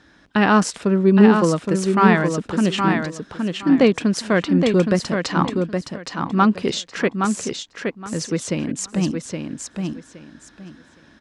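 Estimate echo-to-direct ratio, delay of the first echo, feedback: -5.0 dB, 0.818 s, 21%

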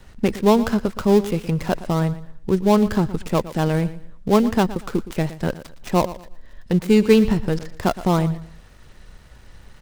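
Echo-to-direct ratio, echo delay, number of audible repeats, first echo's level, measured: -15.0 dB, 0.117 s, 2, -15.5 dB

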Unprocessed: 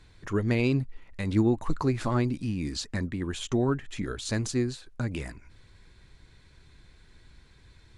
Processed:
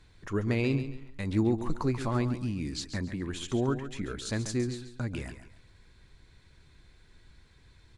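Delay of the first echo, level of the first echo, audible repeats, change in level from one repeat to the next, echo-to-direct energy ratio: 0.138 s, -11.0 dB, 3, -10.5 dB, -10.5 dB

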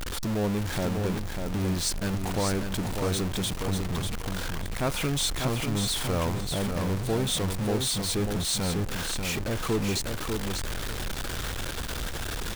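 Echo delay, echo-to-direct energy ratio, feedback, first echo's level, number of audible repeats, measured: 0.594 s, -5.5 dB, 19%, -5.5 dB, 2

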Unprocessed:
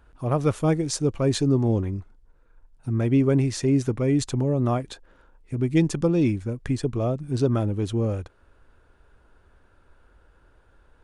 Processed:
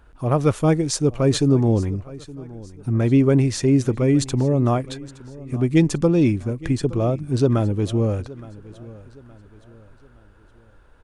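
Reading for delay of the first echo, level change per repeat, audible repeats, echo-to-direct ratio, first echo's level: 0.868 s, -8.0 dB, 2, -19.0 dB, -19.5 dB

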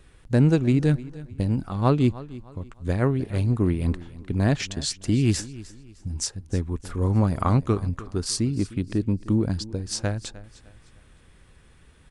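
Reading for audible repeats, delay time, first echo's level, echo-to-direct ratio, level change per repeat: 2, 0.305 s, -18.0 dB, -17.5 dB, -9.5 dB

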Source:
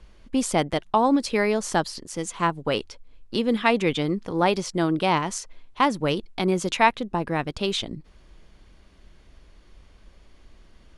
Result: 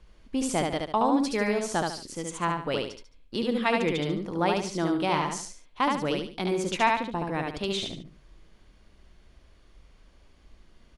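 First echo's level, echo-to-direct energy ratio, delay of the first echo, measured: -3.0 dB, -2.5 dB, 72 ms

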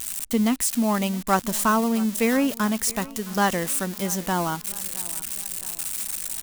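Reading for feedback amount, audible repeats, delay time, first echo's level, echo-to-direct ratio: 51%, 3, 0.666 s, -20.0 dB, -18.5 dB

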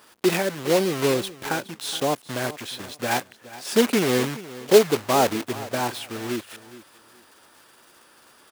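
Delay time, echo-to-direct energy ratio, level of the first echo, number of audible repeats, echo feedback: 0.419 s, -17.0 dB, -17.0 dB, 2, 22%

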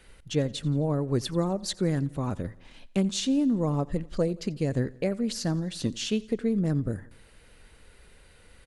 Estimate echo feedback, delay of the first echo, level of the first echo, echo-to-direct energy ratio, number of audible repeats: 53%, 87 ms, -22.0 dB, -20.5 dB, 3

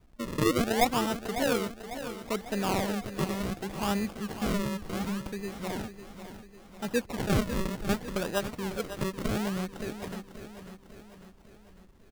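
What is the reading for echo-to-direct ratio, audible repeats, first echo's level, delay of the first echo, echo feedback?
-9.5 dB, 5, -11.0 dB, 0.549 s, 53%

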